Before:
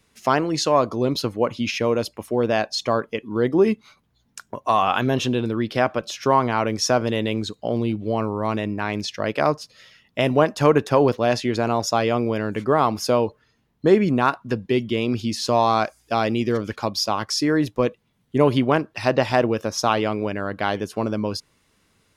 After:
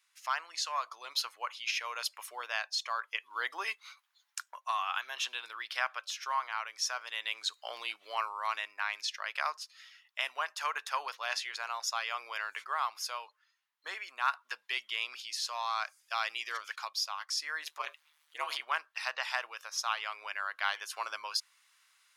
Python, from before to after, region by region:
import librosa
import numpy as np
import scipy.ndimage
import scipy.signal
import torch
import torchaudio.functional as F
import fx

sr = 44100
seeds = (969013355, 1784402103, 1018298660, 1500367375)

y = fx.chain(x, sr, fx.transient(attack_db=1, sustain_db=11),
    fx.ring_mod(carrier_hz=77.0), at=(17.63, 18.62))
y = scipy.signal.sosfilt(scipy.signal.butter(4, 1100.0, 'highpass', fs=sr, output='sos'), y)
y = fx.rider(y, sr, range_db=10, speed_s=0.5)
y = y * 10.0 ** (-6.0 / 20.0)